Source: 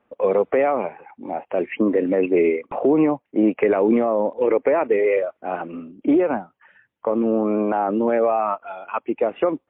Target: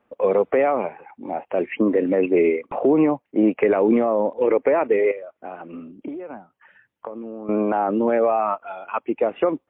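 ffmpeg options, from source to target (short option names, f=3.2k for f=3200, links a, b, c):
-filter_complex "[0:a]asettb=1/sr,asplit=3[a][b][c];[a]atrim=end=5.114[d];[b]atrim=start=5.11:end=7.49,asetpts=PTS-STARTPTS,afade=t=in:d=0.004:c=qsin,afade=t=out:st=2.376:d=0.004:c=qsin,acompressor=threshold=-31dB:ratio=8[e];[c]atrim=start=7.486[f];[d][e]acrossfade=d=0.004:c1=hsin:c2=qsin[g];[g][f]acrossfade=d=0.004:c1=qsin:c2=hsin"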